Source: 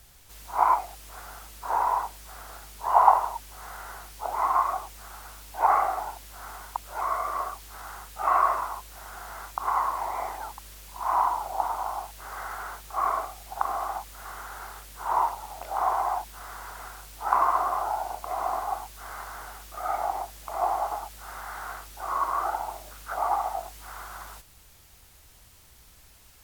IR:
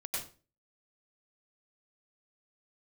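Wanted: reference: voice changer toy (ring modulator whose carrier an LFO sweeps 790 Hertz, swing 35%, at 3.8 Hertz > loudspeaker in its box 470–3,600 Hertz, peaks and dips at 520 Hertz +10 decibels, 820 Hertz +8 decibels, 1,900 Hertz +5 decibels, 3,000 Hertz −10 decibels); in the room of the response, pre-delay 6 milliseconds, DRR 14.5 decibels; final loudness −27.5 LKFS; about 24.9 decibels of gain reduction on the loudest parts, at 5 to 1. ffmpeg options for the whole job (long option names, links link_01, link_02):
-filter_complex "[0:a]acompressor=threshold=-41dB:ratio=5,asplit=2[link_01][link_02];[1:a]atrim=start_sample=2205,adelay=6[link_03];[link_02][link_03]afir=irnorm=-1:irlink=0,volume=-16.5dB[link_04];[link_01][link_04]amix=inputs=2:normalize=0,aeval=exprs='val(0)*sin(2*PI*790*n/s+790*0.35/3.8*sin(2*PI*3.8*n/s))':channel_layout=same,highpass=470,equalizer=frequency=520:width_type=q:width=4:gain=10,equalizer=frequency=820:width_type=q:width=4:gain=8,equalizer=frequency=1900:width_type=q:width=4:gain=5,equalizer=frequency=3000:width_type=q:width=4:gain=-10,lowpass=frequency=3600:width=0.5412,lowpass=frequency=3600:width=1.3066,volume=17dB"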